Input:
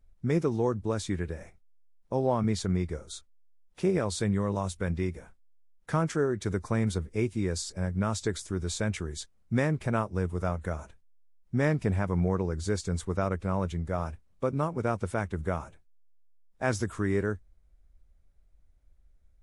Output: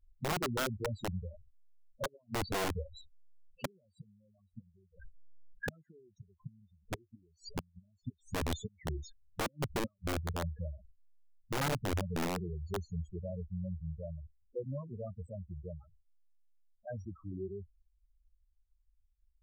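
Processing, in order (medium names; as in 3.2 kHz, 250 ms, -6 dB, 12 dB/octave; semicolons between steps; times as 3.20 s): Doppler pass-by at 5.73 s, 18 m/s, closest 24 m; inverted gate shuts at -25 dBFS, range -40 dB; loudest bins only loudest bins 4; integer overflow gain 36.5 dB; trim +8.5 dB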